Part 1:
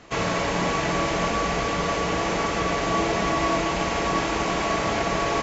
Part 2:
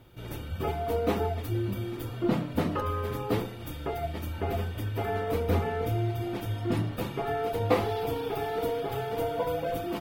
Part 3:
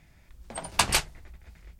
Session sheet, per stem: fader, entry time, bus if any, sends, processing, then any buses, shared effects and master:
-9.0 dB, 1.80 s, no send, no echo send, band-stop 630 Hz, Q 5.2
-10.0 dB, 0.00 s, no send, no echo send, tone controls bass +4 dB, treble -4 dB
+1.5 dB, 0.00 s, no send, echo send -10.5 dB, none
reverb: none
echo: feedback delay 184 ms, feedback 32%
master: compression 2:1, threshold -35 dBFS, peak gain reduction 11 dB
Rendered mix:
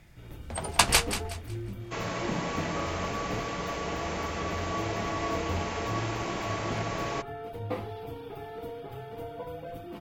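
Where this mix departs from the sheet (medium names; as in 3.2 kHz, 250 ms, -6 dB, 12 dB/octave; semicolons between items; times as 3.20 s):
stem 1: missing band-stop 630 Hz, Q 5.2; master: missing compression 2:1, threshold -35 dBFS, peak gain reduction 11 dB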